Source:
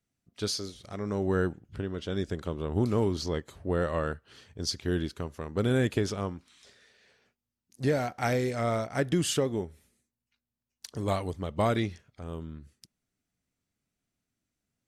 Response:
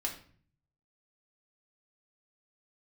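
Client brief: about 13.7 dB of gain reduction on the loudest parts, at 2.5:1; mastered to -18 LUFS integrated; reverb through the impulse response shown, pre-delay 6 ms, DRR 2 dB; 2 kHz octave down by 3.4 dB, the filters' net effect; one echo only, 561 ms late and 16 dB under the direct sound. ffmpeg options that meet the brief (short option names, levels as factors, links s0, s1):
-filter_complex "[0:a]equalizer=f=2000:t=o:g=-4.5,acompressor=threshold=0.00708:ratio=2.5,aecho=1:1:561:0.158,asplit=2[s0][s1];[1:a]atrim=start_sample=2205,adelay=6[s2];[s1][s2]afir=irnorm=-1:irlink=0,volume=0.631[s3];[s0][s3]amix=inputs=2:normalize=0,volume=14.1"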